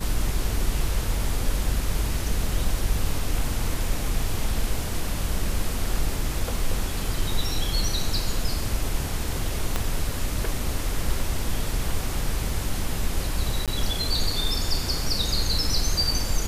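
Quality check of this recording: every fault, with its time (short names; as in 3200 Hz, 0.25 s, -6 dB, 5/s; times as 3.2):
9.76 pop -9 dBFS
13.66–13.68 gap 17 ms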